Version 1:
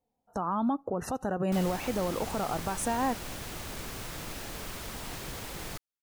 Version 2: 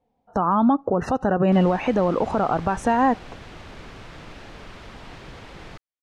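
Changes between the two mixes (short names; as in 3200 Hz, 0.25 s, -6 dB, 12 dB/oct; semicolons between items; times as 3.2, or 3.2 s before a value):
speech +10.5 dB; master: add LPF 3400 Hz 12 dB/oct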